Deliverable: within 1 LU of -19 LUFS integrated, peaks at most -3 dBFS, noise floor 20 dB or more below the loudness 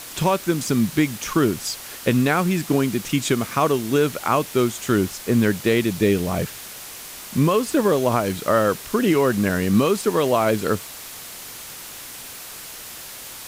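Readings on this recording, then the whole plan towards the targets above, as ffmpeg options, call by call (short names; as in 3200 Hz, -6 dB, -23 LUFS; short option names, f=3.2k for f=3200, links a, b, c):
noise floor -37 dBFS; noise floor target -41 dBFS; loudness -21.0 LUFS; peak -7.0 dBFS; loudness target -19.0 LUFS
-> -af "afftdn=nr=6:nf=-37"
-af "volume=2dB"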